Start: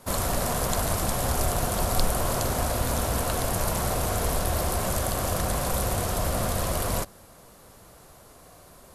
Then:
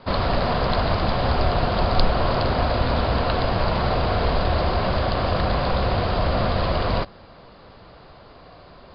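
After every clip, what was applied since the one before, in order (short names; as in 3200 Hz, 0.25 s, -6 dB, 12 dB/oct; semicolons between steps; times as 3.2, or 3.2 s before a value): Chebyshev low-pass 4900 Hz, order 8; gain +6.5 dB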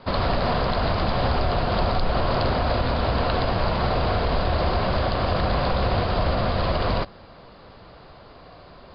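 limiter -13 dBFS, peak gain reduction 10 dB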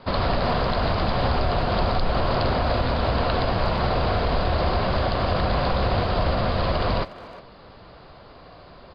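speakerphone echo 0.36 s, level -15 dB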